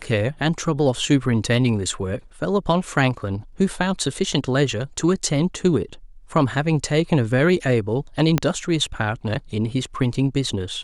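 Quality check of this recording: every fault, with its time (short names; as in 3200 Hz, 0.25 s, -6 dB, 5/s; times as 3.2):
8.38 pop -5 dBFS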